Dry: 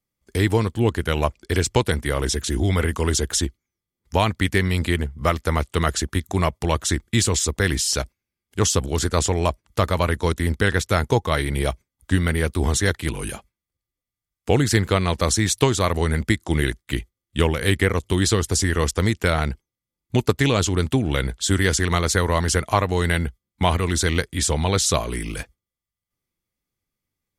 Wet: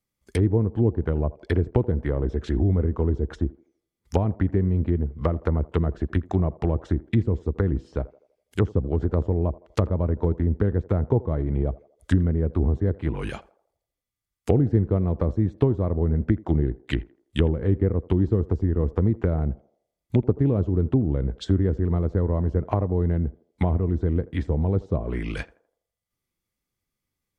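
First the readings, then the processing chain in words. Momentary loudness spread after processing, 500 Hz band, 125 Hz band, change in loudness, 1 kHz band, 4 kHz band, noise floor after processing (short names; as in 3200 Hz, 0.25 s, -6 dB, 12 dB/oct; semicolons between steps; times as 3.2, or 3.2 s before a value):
8 LU, -3.5 dB, 0.0 dB, -3.0 dB, -11.5 dB, -19.5 dB, -85 dBFS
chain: treble ducked by the level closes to 420 Hz, closed at -17.5 dBFS; narrowing echo 82 ms, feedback 48%, band-pass 610 Hz, level -18 dB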